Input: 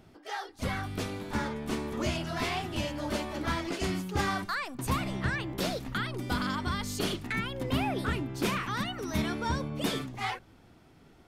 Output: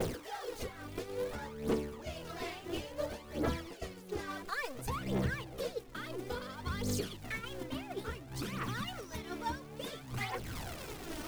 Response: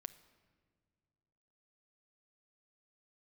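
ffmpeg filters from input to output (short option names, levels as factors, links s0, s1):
-af "aeval=exprs='val(0)+0.5*0.0211*sgn(val(0))':c=same,acrusher=bits=8:mix=0:aa=0.000001,asetnsamples=n=441:p=0,asendcmd='7.03 equalizer g 4',equalizer=f=480:w=3.9:g=14.5,acompressor=threshold=0.0178:ratio=10,aphaser=in_gain=1:out_gain=1:delay=3.4:decay=0.56:speed=0.58:type=triangular,agate=range=0.0224:threshold=0.0282:ratio=3:detection=peak,volume=1.12"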